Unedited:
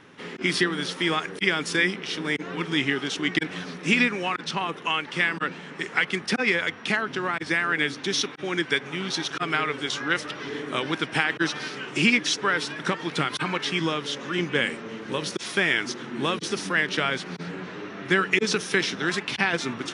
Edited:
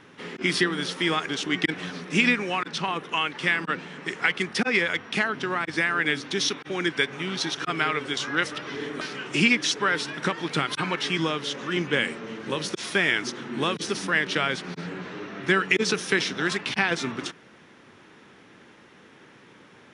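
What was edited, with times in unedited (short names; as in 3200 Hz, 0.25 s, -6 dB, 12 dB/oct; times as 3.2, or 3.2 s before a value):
1.29–3.02 cut
10.74–11.63 cut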